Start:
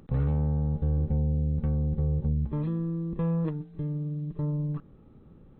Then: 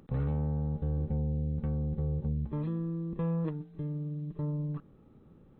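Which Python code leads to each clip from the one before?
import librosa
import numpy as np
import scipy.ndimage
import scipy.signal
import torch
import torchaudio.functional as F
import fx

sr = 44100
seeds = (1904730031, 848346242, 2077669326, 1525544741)

y = fx.low_shelf(x, sr, hz=88.0, db=-6.5)
y = y * librosa.db_to_amplitude(-2.5)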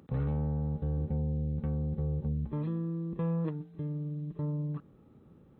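y = scipy.signal.sosfilt(scipy.signal.butter(2, 52.0, 'highpass', fs=sr, output='sos'), x)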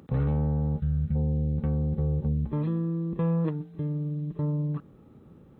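y = fx.spec_box(x, sr, start_s=0.8, length_s=0.35, low_hz=220.0, high_hz=1200.0, gain_db=-18)
y = y * librosa.db_to_amplitude(5.5)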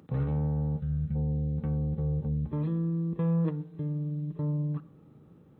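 y = scipy.signal.sosfilt(scipy.signal.butter(2, 60.0, 'highpass', fs=sr, output='sos'), x)
y = fx.room_shoebox(y, sr, seeds[0], volume_m3=2200.0, walls='furnished', distance_m=0.52)
y = y * librosa.db_to_amplitude(-4.0)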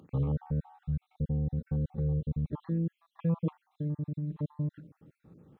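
y = fx.spec_dropout(x, sr, seeds[1], share_pct=55)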